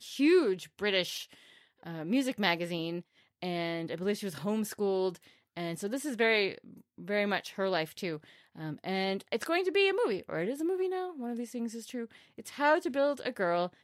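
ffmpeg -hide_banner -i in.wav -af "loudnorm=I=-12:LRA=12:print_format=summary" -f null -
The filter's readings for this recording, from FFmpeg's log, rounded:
Input Integrated:    -31.9 LUFS
Input True Peak:     -12.4 dBTP
Input LRA:             2.5 LU
Input Threshold:     -42.4 LUFS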